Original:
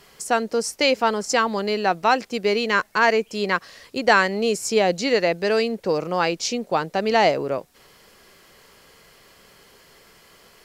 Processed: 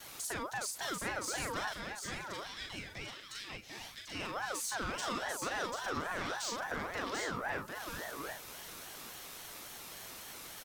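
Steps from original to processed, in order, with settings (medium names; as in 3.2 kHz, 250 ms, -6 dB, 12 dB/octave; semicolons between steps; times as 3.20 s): gate with hold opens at -46 dBFS; treble shelf 6.4 kHz +11.5 dB; compression 4:1, threshold -32 dBFS, peak gain reduction 17.5 dB; peak limiter -24.5 dBFS, peak gain reduction 6.5 dB; saturation -32.5 dBFS, distortion -12 dB; 1.69–4.15 s: rippled Chebyshev high-pass 780 Hz, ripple 6 dB; doubling 40 ms -4 dB; feedback delay 742 ms, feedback 17%, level -5 dB; ring modulator with a swept carrier 990 Hz, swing 30%, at 3.6 Hz; trim +1 dB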